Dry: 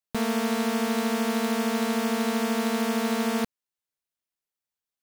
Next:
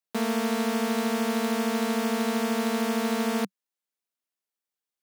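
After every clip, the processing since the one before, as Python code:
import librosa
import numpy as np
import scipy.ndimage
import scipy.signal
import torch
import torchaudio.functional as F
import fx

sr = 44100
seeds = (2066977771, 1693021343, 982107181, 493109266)

y = scipy.signal.sosfilt(scipy.signal.ellip(4, 1.0, 40, 190.0, 'highpass', fs=sr, output='sos'), x)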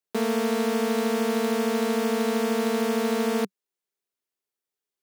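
y = fx.peak_eq(x, sr, hz=400.0, db=10.5, octaves=0.36)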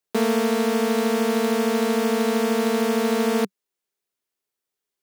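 y = fx.rider(x, sr, range_db=10, speed_s=0.5)
y = F.gain(torch.from_numpy(y), 3.5).numpy()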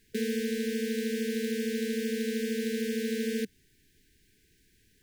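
y = fx.dmg_noise_colour(x, sr, seeds[0], colour='pink', level_db=-56.0)
y = fx.brickwall_bandstop(y, sr, low_hz=470.0, high_hz=1500.0)
y = F.gain(torch.from_numpy(y), -8.5).numpy()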